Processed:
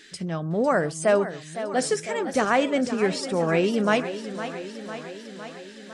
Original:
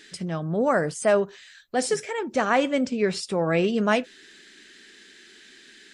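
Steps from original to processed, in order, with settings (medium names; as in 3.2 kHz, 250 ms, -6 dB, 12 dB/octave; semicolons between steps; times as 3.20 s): 2.04–2.45 s: tone controls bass +4 dB, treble +5 dB; modulated delay 506 ms, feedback 67%, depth 109 cents, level -11.5 dB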